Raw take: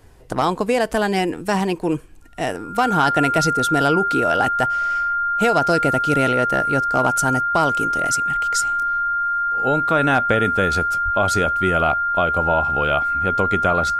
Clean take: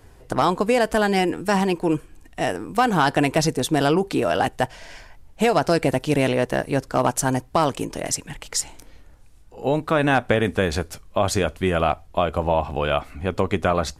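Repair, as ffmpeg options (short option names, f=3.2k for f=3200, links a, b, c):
-filter_complex "[0:a]bandreject=f=1.4k:w=30,asplit=3[a][b][c];[a]afade=t=out:st=11.04:d=0.02[d];[b]highpass=f=140:w=0.5412,highpass=f=140:w=1.3066,afade=t=in:st=11.04:d=0.02,afade=t=out:st=11.16:d=0.02[e];[c]afade=t=in:st=11.16:d=0.02[f];[d][e][f]amix=inputs=3:normalize=0"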